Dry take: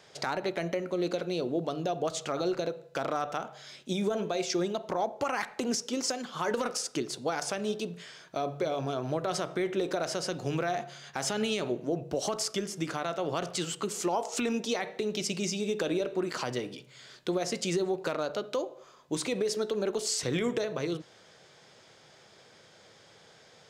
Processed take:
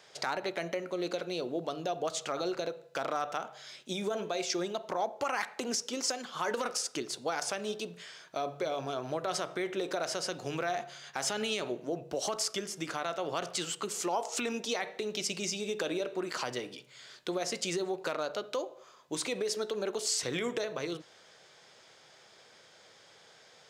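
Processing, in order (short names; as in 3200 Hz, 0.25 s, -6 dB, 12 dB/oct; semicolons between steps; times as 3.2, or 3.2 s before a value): low shelf 330 Hz -10 dB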